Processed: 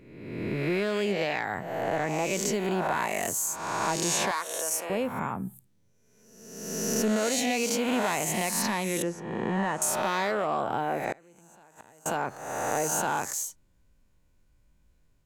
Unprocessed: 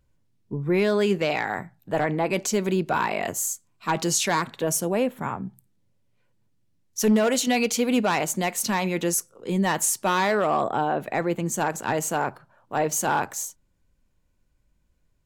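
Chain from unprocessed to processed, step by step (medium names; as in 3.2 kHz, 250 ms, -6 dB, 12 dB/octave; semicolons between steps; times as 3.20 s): reverse spectral sustain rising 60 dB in 1.10 s; 9.02–9.82 s: low-pass 2.1 kHz 12 dB/octave; compression 2:1, threshold -30 dBFS, peak gain reduction 9 dB; 4.31–4.90 s: high-pass 680 Hz 12 dB/octave; 11.12–12.06 s: inverted gate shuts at -21 dBFS, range -27 dB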